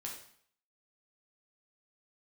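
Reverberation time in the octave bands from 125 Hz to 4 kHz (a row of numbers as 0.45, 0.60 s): 0.60, 0.60, 0.60, 0.60, 0.60, 0.55 s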